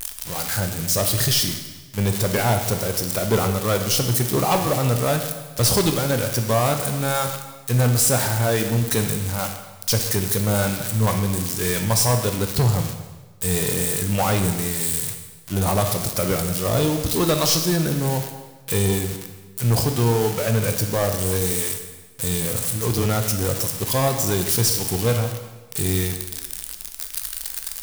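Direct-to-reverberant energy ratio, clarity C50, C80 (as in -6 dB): 5.0 dB, 7.5 dB, 9.0 dB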